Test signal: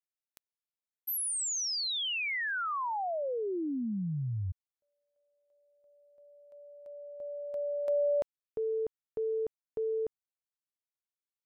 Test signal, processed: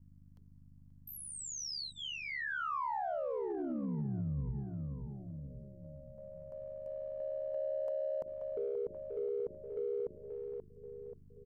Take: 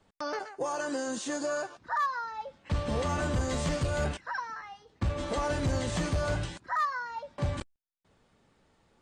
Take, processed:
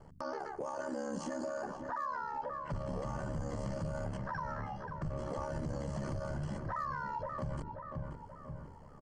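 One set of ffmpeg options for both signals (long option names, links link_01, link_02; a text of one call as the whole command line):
ffmpeg -i in.wav -filter_complex "[0:a]bandreject=frequency=50:width_type=h:width=6,bandreject=frequency=100:width_type=h:width=6,bandreject=frequency=150:width_type=h:width=6,bandreject=frequency=200:width_type=h:width=6,bandreject=frequency=250:width_type=h:width=6,bandreject=frequency=300:width_type=h:width=6,bandreject=frequency=350:width_type=h:width=6,bandreject=frequency=400:width_type=h:width=6,acrossover=split=5900[link_01][link_02];[link_02]acompressor=threshold=-48dB:ratio=4:attack=1:release=60[link_03];[link_01][link_03]amix=inputs=2:normalize=0,asuperstop=centerf=3700:order=4:qfactor=3.7,tiltshelf=frequency=1300:gain=6,aeval=exprs='val(0)+0.000708*(sin(2*PI*50*n/s)+sin(2*PI*2*50*n/s)/2+sin(2*PI*3*50*n/s)/3+sin(2*PI*4*50*n/s)/4+sin(2*PI*5*50*n/s)/5)':channel_layout=same,aeval=exprs='val(0)*sin(2*PI*35*n/s)':channel_layout=same,equalizer=frequency=160:width_type=o:width=0.33:gain=6,equalizer=frequency=315:width_type=o:width=0.33:gain=-4,equalizer=frequency=1000:width_type=o:width=0.33:gain=4,equalizer=frequency=2500:width_type=o:width=0.33:gain=-10,asplit=2[link_04][link_05];[link_05]adelay=532,lowpass=frequency=2500:poles=1,volume=-14dB,asplit=2[link_06][link_07];[link_07]adelay=532,lowpass=frequency=2500:poles=1,volume=0.37,asplit=2[link_08][link_09];[link_09]adelay=532,lowpass=frequency=2500:poles=1,volume=0.37,asplit=2[link_10][link_11];[link_11]adelay=532,lowpass=frequency=2500:poles=1,volume=0.37[link_12];[link_06][link_08][link_10][link_12]amix=inputs=4:normalize=0[link_13];[link_04][link_13]amix=inputs=2:normalize=0,acompressor=threshold=-50dB:ratio=2:attack=0.36:release=42:knee=6:detection=rms,acrossover=split=3100[link_14][link_15];[link_14]alimiter=level_in=15dB:limit=-24dB:level=0:latency=1:release=54,volume=-15dB[link_16];[link_16][link_15]amix=inputs=2:normalize=0,volume=8.5dB" out.wav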